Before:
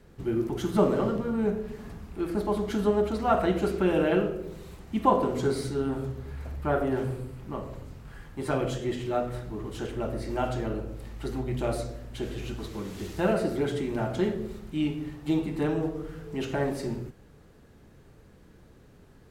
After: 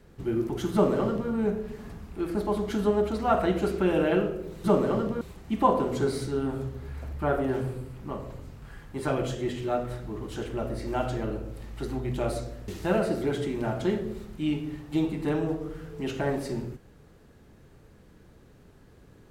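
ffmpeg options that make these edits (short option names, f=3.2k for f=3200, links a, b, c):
-filter_complex "[0:a]asplit=4[a][b][c][d];[a]atrim=end=4.642[e];[b]atrim=start=0.728:end=1.302[f];[c]atrim=start=4.638:end=12.112[g];[d]atrim=start=13.018[h];[e][f]acrossfade=d=0.004:c1=hsin:c2=hsin[i];[i][g]acrossfade=d=0.004:c1=hsin:c2=hsin[j];[j][h]acrossfade=d=0.004:c1=hsin:c2=hsin"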